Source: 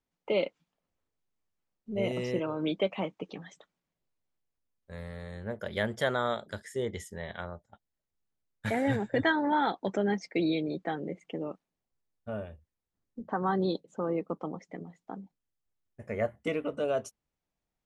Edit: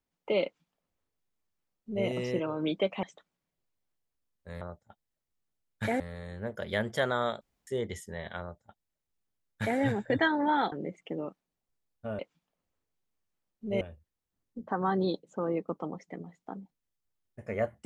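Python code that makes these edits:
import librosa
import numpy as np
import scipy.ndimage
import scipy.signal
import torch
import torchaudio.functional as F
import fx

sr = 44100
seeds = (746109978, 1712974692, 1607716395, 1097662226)

y = fx.edit(x, sr, fx.duplicate(start_s=0.44, length_s=1.62, to_s=12.42),
    fx.cut(start_s=3.03, length_s=0.43),
    fx.room_tone_fill(start_s=6.45, length_s=0.26),
    fx.duplicate(start_s=7.44, length_s=1.39, to_s=5.04),
    fx.cut(start_s=9.76, length_s=1.19), tone=tone)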